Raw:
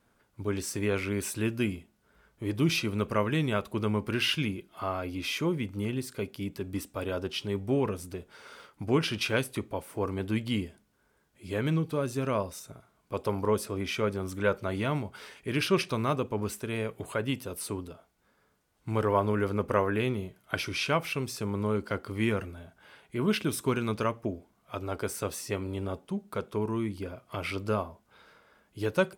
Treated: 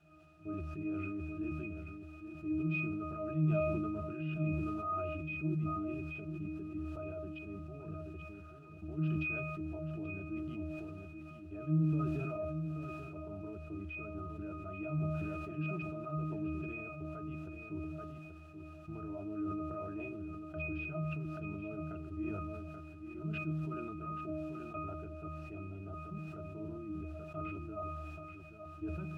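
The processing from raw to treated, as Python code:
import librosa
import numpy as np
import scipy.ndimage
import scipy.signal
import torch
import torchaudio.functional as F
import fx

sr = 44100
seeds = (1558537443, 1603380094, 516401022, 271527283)

y = scipy.signal.sosfilt(scipy.signal.butter(2, 3300.0, 'lowpass', fs=sr, output='sos'), x)
y = fx.hum_notches(y, sr, base_hz=60, count=3)
y = fx.level_steps(y, sr, step_db=18)
y = fx.quant_dither(y, sr, seeds[0], bits=8, dither='triangular')
y = fx.octave_resonator(y, sr, note='D#', decay_s=0.56)
y = y + 10.0 ** (-9.0 / 20.0) * np.pad(y, (int(832 * sr / 1000.0), 0))[:len(y)]
y = fx.sustainer(y, sr, db_per_s=20.0)
y = F.gain(torch.from_numpy(y), 13.0).numpy()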